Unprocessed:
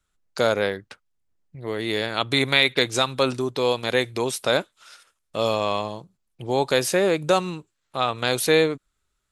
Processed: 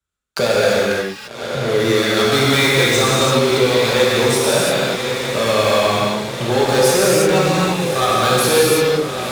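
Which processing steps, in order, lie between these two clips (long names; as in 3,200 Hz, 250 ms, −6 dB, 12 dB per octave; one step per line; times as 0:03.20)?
feedback delay with all-pass diffusion 1,087 ms, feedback 54%, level −15.5 dB
leveller curve on the samples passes 5
high-pass filter 42 Hz
reverb whose tail is shaped and stops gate 370 ms flat, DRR −6.5 dB
multiband upward and downward compressor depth 40%
level −12 dB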